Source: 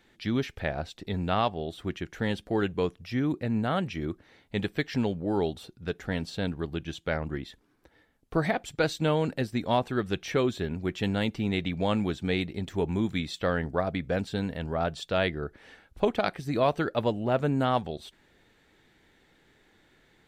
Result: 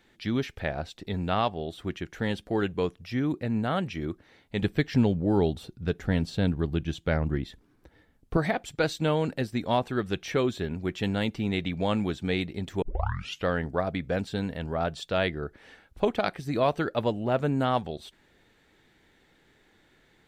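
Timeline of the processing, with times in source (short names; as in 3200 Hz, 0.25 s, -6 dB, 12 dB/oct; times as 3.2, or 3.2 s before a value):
4.62–8.37 low shelf 270 Hz +9 dB
12.82 tape start 0.64 s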